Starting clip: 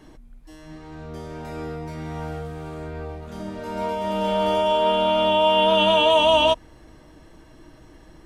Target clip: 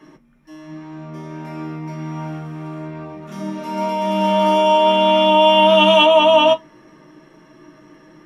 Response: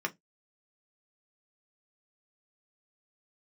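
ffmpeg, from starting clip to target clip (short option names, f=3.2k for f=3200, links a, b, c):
-filter_complex "[0:a]asettb=1/sr,asplit=3[a][b][c];[a]atrim=end=3.274[d];[b]atrim=start=3.27:end=6.06,asetpts=PTS-STARTPTS,afade=t=in:d=0.004:c=qsin,afade=t=out:st=2.786:d=0.004:c=qsin,highshelf=f=3.3k:g=10[e];[c]atrim=start=6.056[f];[d][e]acrossfade=d=0.004:c1=hsin:c2=qsin[g];[g][f]acrossfade=d=0.004:c1=qsin:c2=hsin[h];[1:a]atrim=start_sample=2205[i];[h][i]afir=irnorm=-1:irlink=0,volume=-1dB"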